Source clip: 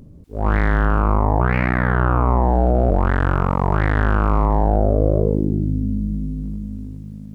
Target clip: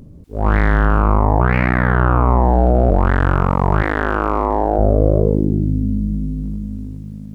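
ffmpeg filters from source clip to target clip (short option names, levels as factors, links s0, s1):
-filter_complex "[0:a]asettb=1/sr,asplit=3[s0][s1][s2];[s0]atrim=end=3.824[s3];[s1]atrim=start=3.82:end=4.79,asetpts=PTS-STARTPTS,afade=t=in:d=0.004:c=qsin,afade=t=out:st=0.966:d=0.004:c=qsin,lowshelf=f=230:t=q:w=1.5:g=-9.5[s4];[s2]atrim=start=4.786[s5];[s3][s4]acrossfade=d=0.004:c1=hsin:c2=qsin[s6];[s6][s5]acrossfade=d=0.004:c1=qsin:c2=hsin,volume=1.41"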